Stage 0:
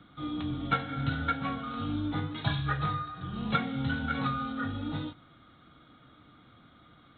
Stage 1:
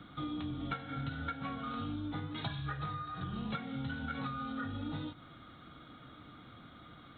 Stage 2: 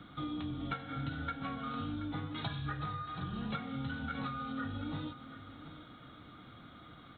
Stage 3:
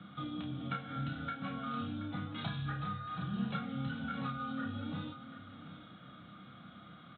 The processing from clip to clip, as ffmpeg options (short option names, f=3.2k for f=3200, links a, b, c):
-af "acompressor=threshold=-40dB:ratio=6,volume=3.5dB"
-af "aecho=1:1:728:0.237"
-filter_complex "[0:a]highpass=120,equalizer=f=190:t=q:w=4:g=8,equalizer=f=290:t=q:w=4:g=-6,equalizer=f=410:t=q:w=4:g=-8,equalizer=f=930:t=q:w=4:g=-6,equalizer=f=2k:t=q:w=4:g=-4,lowpass=f=3.7k:w=0.5412,lowpass=f=3.7k:w=1.3066,asplit=2[a][b];[b]adelay=30,volume=-5dB[c];[a][c]amix=inputs=2:normalize=0"